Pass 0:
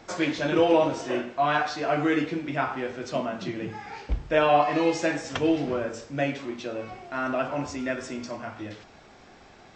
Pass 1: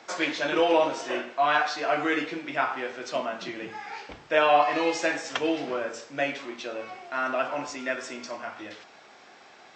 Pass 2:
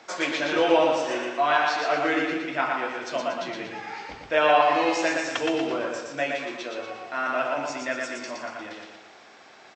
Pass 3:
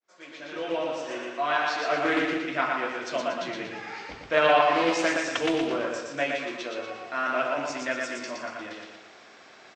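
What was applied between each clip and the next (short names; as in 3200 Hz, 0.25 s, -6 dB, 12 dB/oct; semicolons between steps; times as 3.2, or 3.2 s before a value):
weighting filter A; gain +1.5 dB
feedback echo 0.118 s, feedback 48%, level -3.5 dB
opening faded in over 2.19 s; bell 830 Hz -5.5 dB 0.28 oct; Doppler distortion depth 0.19 ms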